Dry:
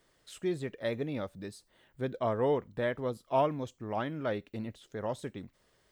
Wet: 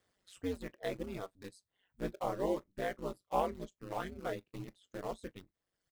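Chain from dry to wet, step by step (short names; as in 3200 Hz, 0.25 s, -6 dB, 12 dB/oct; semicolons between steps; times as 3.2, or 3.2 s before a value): in parallel at -6.5 dB: bit-crush 6-bit; on the sum: early reflections 23 ms -12.5 dB, 39 ms -17 dB; reverb removal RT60 1.1 s; ring modulator 94 Hz; gain -5.5 dB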